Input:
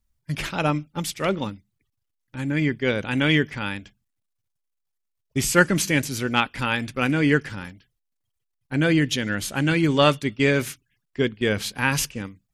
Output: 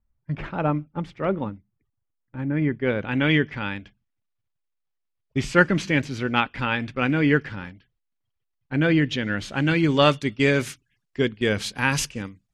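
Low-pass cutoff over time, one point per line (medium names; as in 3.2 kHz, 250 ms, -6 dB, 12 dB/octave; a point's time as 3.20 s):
2.60 s 1.4 kHz
3.35 s 3.3 kHz
9.24 s 3.3 kHz
10.41 s 8.8 kHz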